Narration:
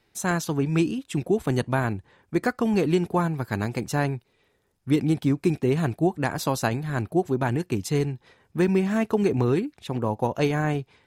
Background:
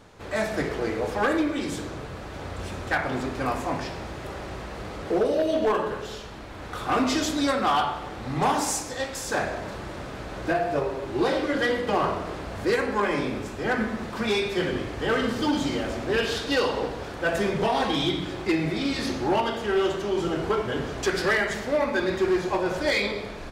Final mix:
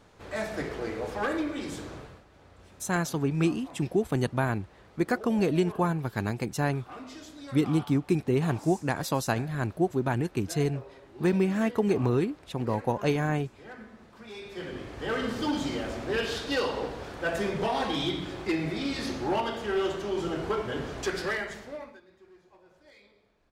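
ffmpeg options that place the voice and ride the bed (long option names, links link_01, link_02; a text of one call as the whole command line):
ffmpeg -i stem1.wav -i stem2.wav -filter_complex "[0:a]adelay=2650,volume=-3dB[link_01];[1:a]volume=9.5dB,afade=type=out:start_time=1.95:duration=0.29:silence=0.199526,afade=type=in:start_time=14.31:duration=1.03:silence=0.16788,afade=type=out:start_time=20.98:duration=1.03:silence=0.0375837[link_02];[link_01][link_02]amix=inputs=2:normalize=0" out.wav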